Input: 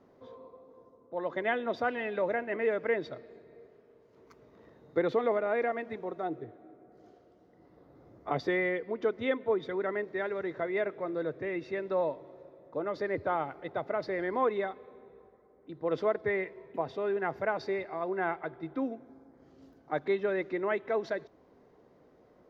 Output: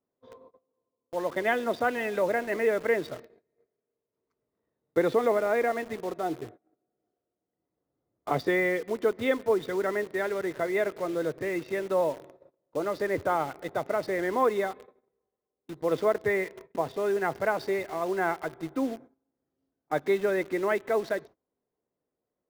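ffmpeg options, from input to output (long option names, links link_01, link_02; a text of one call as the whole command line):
ffmpeg -i in.wav -filter_complex "[0:a]agate=range=-25dB:threshold=-49dB:ratio=16:detection=peak,asplit=2[link_01][link_02];[link_02]acrusher=bits=6:mix=0:aa=0.000001,volume=-5dB[link_03];[link_01][link_03]amix=inputs=2:normalize=0" out.wav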